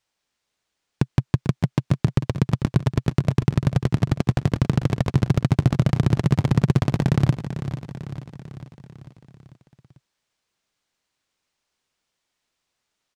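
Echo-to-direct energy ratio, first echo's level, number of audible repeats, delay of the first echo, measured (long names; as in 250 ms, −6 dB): −9.5 dB, −11.0 dB, 5, 445 ms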